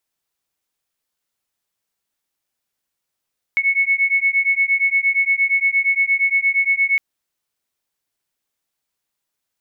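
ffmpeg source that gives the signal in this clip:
ffmpeg -f lavfi -i "aevalsrc='0.133*(sin(2*PI*2200*t)+sin(2*PI*2208.6*t))':duration=3.41:sample_rate=44100" out.wav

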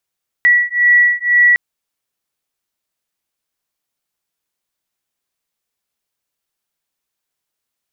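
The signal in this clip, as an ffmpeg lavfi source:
ffmpeg -f lavfi -i "aevalsrc='0.251*(sin(2*PI*1940*t)+sin(2*PI*1942*t))':duration=1.11:sample_rate=44100" out.wav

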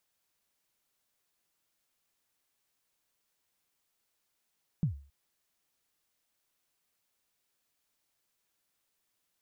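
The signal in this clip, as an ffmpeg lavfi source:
ffmpeg -f lavfi -i "aevalsrc='0.0794*pow(10,-3*t/0.4)*sin(2*PI*(180*0.11/log(70/180)*(exp(log(70/180)*min(t,0.11)/0.11)-1)+70*max(t-0.11,0)))':duration=0.27:sample_rate=44100" out.wav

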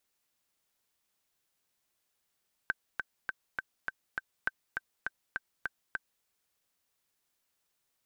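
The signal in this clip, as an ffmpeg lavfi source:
ffmpeg -f lavfi -i "aevalsrc='pow(10,(-15.5-4.5*gte(mod(t,6*60/203),60/203))/20)*sin(2*PI*1550*mod(t,60/203))*exp(-6.91*mod(t,60/203)/0.03)':duration=3.54:sample_rate=44100" out.wav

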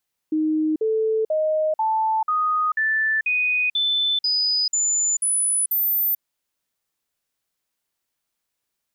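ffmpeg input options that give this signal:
ffmpeg -f lavfi -i "aevalsrc='0.126*clip(min(mod(t,0.49),0.44-mod(t,0.49))/0.005,0,1)*sin(2*PI*311*pow(2,floor(t/0.49)/2)*mod(t,0.49))':duration=5.88:sample_rate=44100" out.wav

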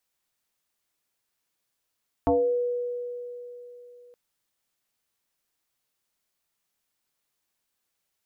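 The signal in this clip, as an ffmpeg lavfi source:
ffmpeg -f lavfi -i "aevalsrc='0.133*pow(10,-3*t/3.48)*sin(2*PI*487*t+2.2*pow(10,-3*t/0.44)*sin(2*PI*0.42*487*t))':duration=1.87:sample_rate=44100" out.wav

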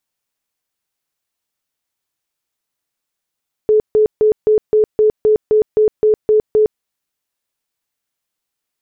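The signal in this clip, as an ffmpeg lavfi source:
ffmpeg -f lavfi -i "aevalsrc='0.398*sin(2*PI*429*mod(t,0.26))*lt(mod(t,0.26),47/429)':duration=3.12:sample_rate=44100" out.wav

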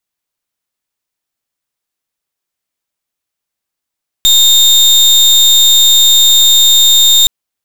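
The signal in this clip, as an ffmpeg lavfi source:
ffmpeg -f lavfi -i "aevalsrc='0.473*(2*lt(mod(3660*t,1),0.33)-1)':duration=3.02:sample_rate=44100" out.wav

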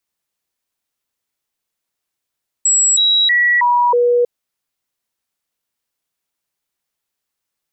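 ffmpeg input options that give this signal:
ffmpeg -f lavfi -i "aevalsrc='0.316*clip(min(mod(t,0.32),0.32-mod(t,0.32))/0.005,0,1)*sin(2*PI*7740*pow(2,-floor(t/0.32)/1)*mod(t,0.32))':duration=1.6:sample_rate=44100" out.wav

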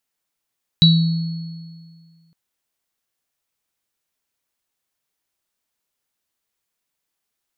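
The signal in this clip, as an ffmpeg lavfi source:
ffmpeg -f lavfi -i "aevalsrc='0.376*pow(10,-3*t/1.94)*sin(2*PI*165*t)+0.376*pow(10,-3*t/0.48)*sin(2*PI*3920*t)+0.0562*pow(10,-3*t/2.04)*sin(2*PI*4360*t)':duration=1.51:sample_rate=44100" out.wav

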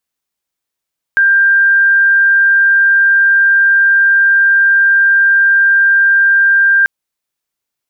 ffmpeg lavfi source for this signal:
ffmpeg -f lavfi -i "sine=frequency=1590:duration=5.69:sample_rate=44100,volume=12.06dB" out.wav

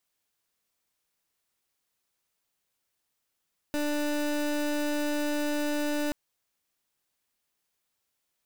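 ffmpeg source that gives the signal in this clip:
ffmpeg -f lavfi -i "aevalsrc='0.0376*(2*lt(mod(295*t,1),0.27)-1)':duration=2.38:sample_rate=44100" out.wav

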